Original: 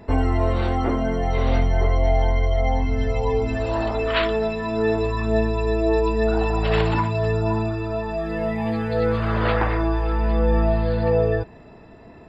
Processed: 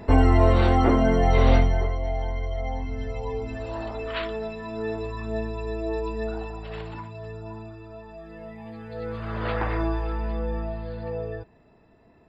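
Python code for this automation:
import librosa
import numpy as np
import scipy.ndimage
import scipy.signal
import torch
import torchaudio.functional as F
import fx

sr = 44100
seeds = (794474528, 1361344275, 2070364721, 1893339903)

y = fx.gain(x, sr, db=fx.line((1.52, 3.0), (1.98, -9.0), (6.23, -9.0), (6.66, -16.0), (8.72, -16.0), (9.82, -3.5), (10.74, -12.5)))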